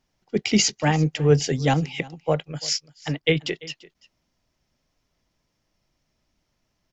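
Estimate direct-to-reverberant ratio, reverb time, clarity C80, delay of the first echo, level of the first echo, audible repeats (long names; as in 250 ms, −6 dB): no reverb audible, no reverb audible, no reverb audible, 341 ms, −21.0 dB, 1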